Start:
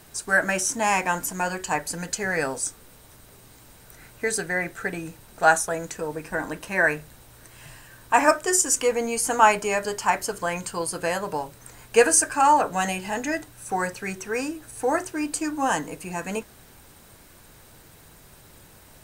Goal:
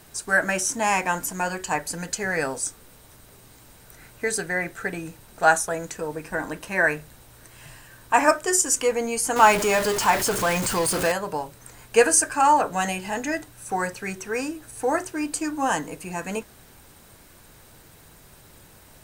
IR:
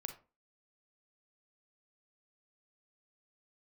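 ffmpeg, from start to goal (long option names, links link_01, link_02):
-filter_complex "[0:a]asettb=1/sr,asplit=3[link_01][link_02][link_03];[link_01]atrim=end=9.364[link_04];[link_02]atrim=start=9.36:end=11.12,asetpts=PTS-STARTPTS,afade=type=in:duration=0.004:curve=qsin,afade=type=out:start_time=1.756:duration=0.004:curve=qsin,aeval=exprs='val(0)+0.5*0.075*sgn(val(0))':channel_layout=same[link_05];[link_03]atrim=start=11.116[link_06];[link_04][link_05]acrossfade=duration=0.004:curve1=hsin:curve2=qsin[link_07];[link_07][link_06]acrossfade=duration=0.004:curve1=qsin:curve2=hsin"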